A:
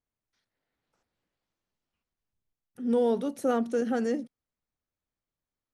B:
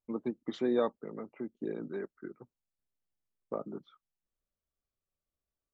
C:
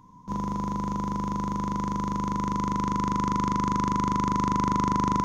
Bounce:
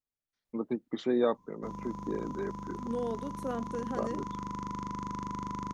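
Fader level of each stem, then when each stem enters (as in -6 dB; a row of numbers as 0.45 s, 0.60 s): -9.5 dB, +2.0 dB, -12.0 dB; 0.00 s, 0.45 s, 1.35 s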